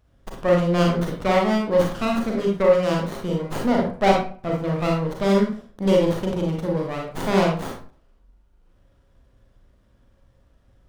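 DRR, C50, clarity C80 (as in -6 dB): -1.0 dB, 3.5 dB, 9.5 dB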